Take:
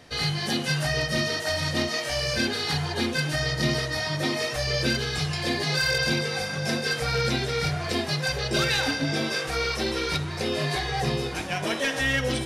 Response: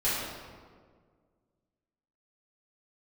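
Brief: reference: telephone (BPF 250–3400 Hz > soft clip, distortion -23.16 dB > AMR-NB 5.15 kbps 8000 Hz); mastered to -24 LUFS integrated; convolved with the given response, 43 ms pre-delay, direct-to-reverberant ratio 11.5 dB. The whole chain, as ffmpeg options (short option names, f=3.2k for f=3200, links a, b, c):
-filter_complex "[0:a]asplit=2[a][b];[1:a]atrim=start_sample=2205,adelay=43[c];[b][c]afir=irnorm=-1:irlink=0,volume=-22.5dB[d];[a][d]amix=inputs=2:normalize=0,highpass=250,lowpass=3.4k,asoftclip=threshold=-18dB,volume=9dB" -ar 8000 -c:a libopencore_amrnb -b:a 5150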